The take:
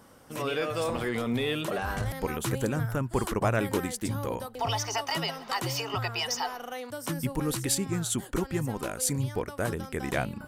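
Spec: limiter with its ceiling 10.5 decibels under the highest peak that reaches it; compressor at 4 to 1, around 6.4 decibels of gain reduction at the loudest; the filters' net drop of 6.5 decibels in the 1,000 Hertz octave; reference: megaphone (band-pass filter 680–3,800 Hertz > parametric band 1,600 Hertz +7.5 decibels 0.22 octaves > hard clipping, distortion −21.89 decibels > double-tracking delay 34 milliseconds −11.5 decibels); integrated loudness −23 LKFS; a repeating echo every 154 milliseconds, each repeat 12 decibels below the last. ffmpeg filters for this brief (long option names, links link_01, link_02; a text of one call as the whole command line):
ffmpeg -i in.wav -filter_complex "[0:a]equalizer=frequency=1000:width_type=o:gain=-7.5,acompressor=threshold=-31dB:ratio=4,alimiter=level_in=5.5dB:limit=-24dB:level=0:latency=1,volume=-5.5dB,highpass=680,lowpass=3800,equalizer=frequency=1600:width_type=o:width=0.22:gain=7.5,aecho=1:1:154|308|462:0.251|0.0628|0.0157,asoftclip=type=hard:threshold=-34.5dB,asplit=2[link_01][link_02];[link_02]adelay=34,volume=-11.5dB[link_03];[link_01][link_03]amix=inputs=2:normalize=0,volume=20.5dB" out.wav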